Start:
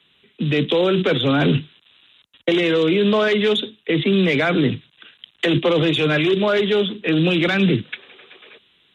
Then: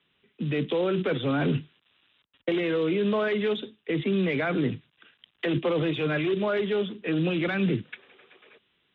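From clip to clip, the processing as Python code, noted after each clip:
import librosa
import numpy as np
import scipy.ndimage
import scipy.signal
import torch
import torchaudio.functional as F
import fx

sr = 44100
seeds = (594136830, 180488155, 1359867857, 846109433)

y = scipy.signal.sosfilt(scipy.signal.butter(2, 2500.0, 'lowpass', fs=sr, output='sos'), x)
y = F.gain(torch.from_numpy(y), -8.0).numpy()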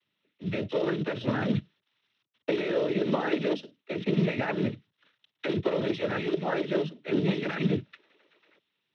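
y = fx.noise_vocoder(x, sr, seeds[0], bands=12)
y = fx.upward_expand(y, sr, threshold_db=-39.0, expansion=1.5)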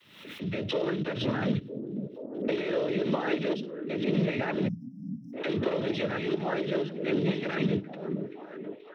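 y = fx.echo_stepped(x, sr, ms=480, hz=210.0, octaves=0.7, feedback_pct=70, wet_db=-6.0)
y = fx.spec_erase(y, sr, start_s=4.69, length_s=0.65, low_hz=300.0, high_hz=5000.0)
y = fx.pre_swell(y, sr, db_per_s=70.0)
y = F.gain(torch.from_numpy(y), -2.0).numpy()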